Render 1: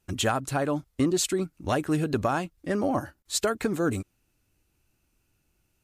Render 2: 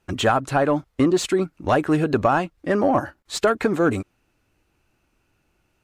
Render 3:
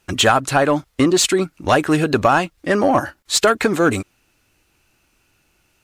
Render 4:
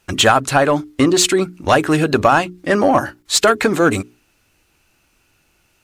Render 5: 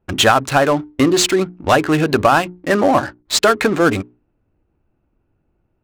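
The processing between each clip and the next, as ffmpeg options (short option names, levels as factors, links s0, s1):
-filter_complex "[0:a]asplit=2[s0][s1];[s1]highpass=f=720:p=1,volume=2.82,asoftclip=type=tanh:threshold=0.211[s2];[s0][s2]amix=inputs=2:normalize=0,lowpass=f=1300:p=1,volume=0.501,volume=2.51"
-af "highshelf=f=2000:g=10.5,volume=1.33"
-af "bandreject=f=60:t=h:w=6,bandreject=f=120:t=h:w=6,bandreject=f=180:t=h:w=6,bandreject=f=240:t=h:w=6,bandreject=f=300:t=h:w=6,bandreject=f=360:t=h:w=6,bandreject=f=420:t=h:w=6,volume=1.26"
-af "adynamicsmooth=sensitivity=4:basefreq=600"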